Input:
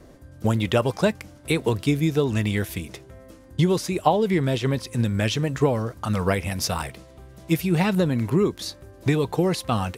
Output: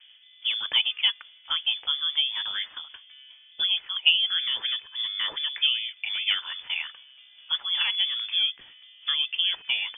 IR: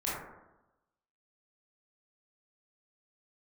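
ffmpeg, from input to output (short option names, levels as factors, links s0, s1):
-filter_complex "[0:a]highpass=120,acrossover=split=420 2100:gain=0.251 1 0.1[s0][s1][s2];[s0][s1][s2]amix=inputs=3:normalize=0,acrossover=split=240[s3][s4];[s3]acontrast=37[s5];[s5][s4]amix=inputs=2:normalize=0,lowpass=f=3100:t=q:w=0.5098,lowpass=f=3100:t=q:w=0.6013,lowpass=f=3100:t=q:w=0.9,lowpass=f=3100:t=q:w=2.563,afreqshift=-3600"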